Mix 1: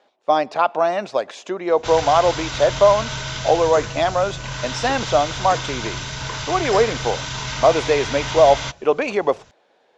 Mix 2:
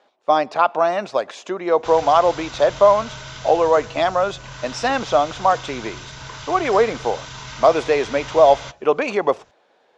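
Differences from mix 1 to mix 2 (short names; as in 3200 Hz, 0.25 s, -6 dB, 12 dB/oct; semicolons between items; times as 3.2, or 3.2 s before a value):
background -8.0 dB; master: add bell 1200 Hz +3 dB 0.68 oct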